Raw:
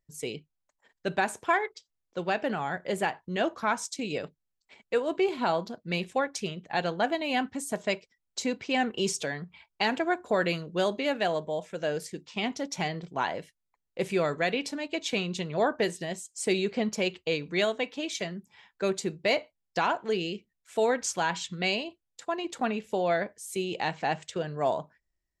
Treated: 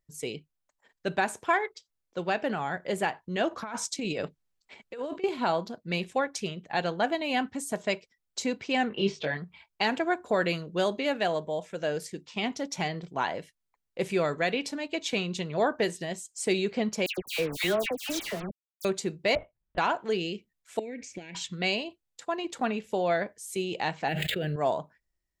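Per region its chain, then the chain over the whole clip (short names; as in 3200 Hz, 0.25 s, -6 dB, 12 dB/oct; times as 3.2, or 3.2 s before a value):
3.51–5.24 high shelf 7500 Hz -4.5 dB + negative-ratio compressor -34 dBFS
8.89–9.37 LPF 3900 Hz 24 dB/oct + doubler 20 ms -3 dB
17.06–18.85 requantised 6-bit, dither none + dispersion lows, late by 0.119 s, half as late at 2000 Hz
19.35–19.78 LPF 1600 Hz + LPC vocoder at 8 kHz whisper
20.79–21.35 compressor 10:1, threshold -33 dBFS + EQ curve 160 Hz 0 dB, 270 Hz +7 dB, 670 Hz -7 dB, 1200 Hz -28 dB, 2300 Hz +10 dB, 3200 Hz -8 dB, 7000 Hz -7 dB, 13000 Hz -22 dB
24.08–24.56 median filter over 5 samples + fixed phaser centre 2500 Hz, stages 4 + fast leveller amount 100%
whole clip: dry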